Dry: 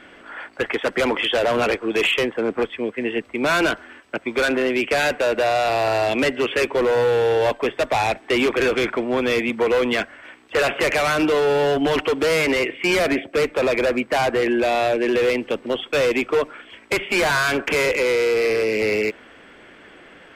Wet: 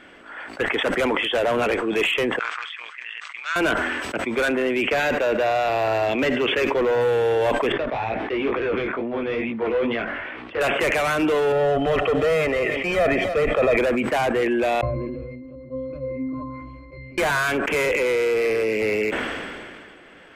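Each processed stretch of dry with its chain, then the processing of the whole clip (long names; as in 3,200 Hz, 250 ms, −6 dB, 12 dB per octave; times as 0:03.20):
0:02.39–0:03.56: Chebyshev band-pass filter 1,200–7,000 Hz, order 3 + amplitude modulation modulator 160 Hz, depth 50%
0:04.86–0:07.01: parametric band 9,500 Hz −14 dB 0.46 octaves + single-tap delay 72 ms −22 dB
0:07.72–0:10.61: high-frequency loss of the air 310 metres + chorus effect 2.2 Hz, delay 17 ms, depth 5.3 ms
0:11.52–0:13.77: parametric band 13,000 Hz −10.5 dB 2.6 octaves + comb filter 1.6 ms, depth 61% + single-tap delay 292 ms −18 dB
0:14.81–0:17.18: converter with a step at zero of −28.5 dBFS + spectral tilt −3 dB per octave + resonances in every octave C, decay 0.64 s
whole clip: dynamic equaliser 4,700 Hz, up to −7 dB, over −44 dBFS, Q 1.9; level that may fall only so fast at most 27 dB per second; level −2 dB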